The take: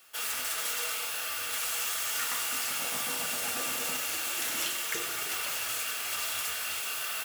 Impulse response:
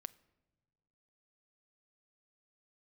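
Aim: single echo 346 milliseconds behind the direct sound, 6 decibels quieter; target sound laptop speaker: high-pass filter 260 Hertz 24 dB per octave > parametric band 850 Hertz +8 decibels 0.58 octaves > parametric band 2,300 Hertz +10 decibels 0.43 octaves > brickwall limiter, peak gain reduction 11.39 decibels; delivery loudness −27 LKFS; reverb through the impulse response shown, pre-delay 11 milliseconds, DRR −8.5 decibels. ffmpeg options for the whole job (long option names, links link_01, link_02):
-filter_complex "[0:a]aecho=1:1:346:0.501,asplit=2[link_01][link_02];[1:a]atrim=start_sample=2205,adelay=11[link_03];[link_02][link_03]afir=irnorm=-1:irlink=0,volume=13dB[link_04];[link_01][link_04]amix=inputs=2:normalize=0,highpass=frequency=260:width=0.5412,highpass=frequency=260:width=1.3066,equalizer=frequency=850:width_type=o:width=0.58:gain=8,equalizer=frequency=2300:width_type=o:width=0.43:gain=10,volume=-3.5dB,alimiter=limit=-20dB:level=0:latency=1"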